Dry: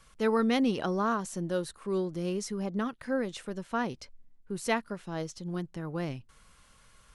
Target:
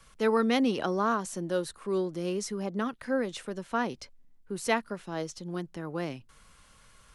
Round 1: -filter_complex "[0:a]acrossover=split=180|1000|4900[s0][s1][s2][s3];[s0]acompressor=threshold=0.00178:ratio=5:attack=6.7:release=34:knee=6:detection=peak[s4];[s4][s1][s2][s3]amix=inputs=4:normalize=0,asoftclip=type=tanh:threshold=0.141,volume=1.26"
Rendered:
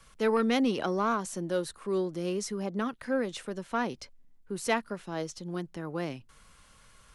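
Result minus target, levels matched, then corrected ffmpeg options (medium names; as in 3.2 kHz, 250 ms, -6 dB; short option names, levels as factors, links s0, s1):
saturation: distortion +20 dB
-filter_complex "[0:a]acrossover=split=180|1000|4900[s0][s1][s2][s3];[s0]acompressor=threshold=0.00178:ratio=5:attack=6.7:release=34:knee=6:detection=peak[s4];[s4][s1][s2][s3]amix=inputs=4:normalize=0,asoftclip=type=tanh:threshold=0.501,volume=1.26"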